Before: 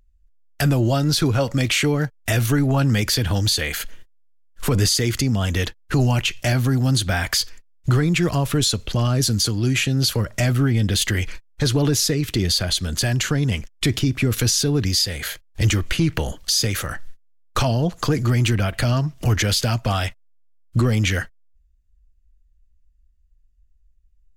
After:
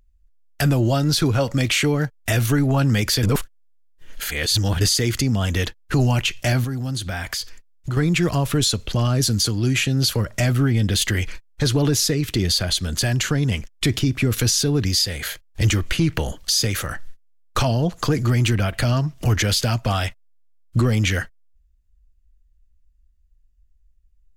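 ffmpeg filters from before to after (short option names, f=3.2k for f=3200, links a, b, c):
-filter_complex "[0:a]asettb=1/sr,asplit=3[a][b][c];[a]atrim=end=6.644[d];[b]atrim=start=6.64:end=7.97,asetpts=PTS-STARTPTS,afade=t=in:d=0.004:c=qsin,afade=t=out:st=1.326:d=0.004:c=qsin,acompressor=threshold=-28dB:ratio=2:attack=3.2:release=140:knee=1:detection=peak[e];[c]atrim=start=7.966[f];[d][e]acrossfade=d=0.004:c1=hsin:c2=qsin[g];[g][f]acrossfade=d=0.004:c1=qsin:c2=hsin,asplit=3[h][i][j];[h]atrim=end=3.232[k];[i]atrim=start=3.228:end=4.812,asetpts=PTS-STARTPTS,areverse[l];[j]atrim=start=4.808[m];[k][l]acrossfade=d=0.004:c1=hsin:c2=hsin[n];[n][m]acrossfade=d=0.004:c1=hsin:c2=hsin"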